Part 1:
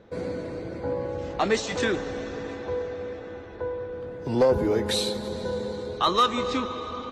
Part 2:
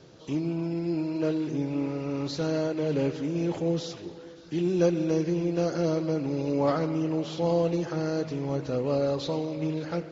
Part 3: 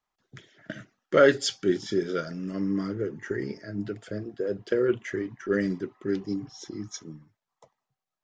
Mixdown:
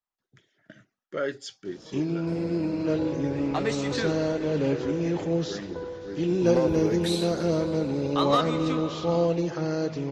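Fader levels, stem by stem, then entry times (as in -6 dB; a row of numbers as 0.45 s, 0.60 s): -5.0 dB, +1.0 dB, -11.5 dB; 2.15 s, 1.65 s, 0.00 s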